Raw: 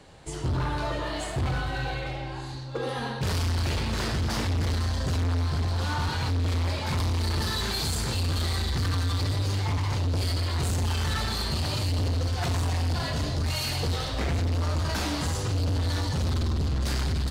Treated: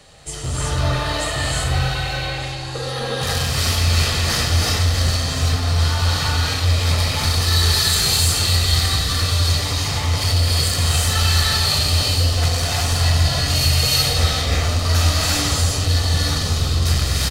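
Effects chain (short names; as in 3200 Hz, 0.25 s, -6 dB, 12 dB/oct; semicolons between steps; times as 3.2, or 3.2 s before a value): high shelf 2100 Hz +10.5 dB; comb 1.6 ms, depth 40%; non-linear reverb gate 0.39 s rising, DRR -4 dB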